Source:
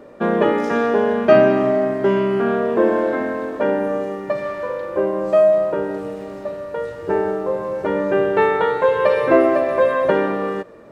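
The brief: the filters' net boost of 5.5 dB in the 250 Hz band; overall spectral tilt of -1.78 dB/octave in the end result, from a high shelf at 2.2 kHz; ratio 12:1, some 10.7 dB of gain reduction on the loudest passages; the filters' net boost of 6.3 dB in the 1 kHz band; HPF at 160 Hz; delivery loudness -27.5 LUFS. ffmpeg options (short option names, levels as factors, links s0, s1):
-af "highpass=160,equalizer=f=250:t=o:g=7.5,equalizer=f=1000:t=o:g=6.5,highshelf=f=2200:g=4,acompressor=threshold=0.2:ratio=12,volume=0.398"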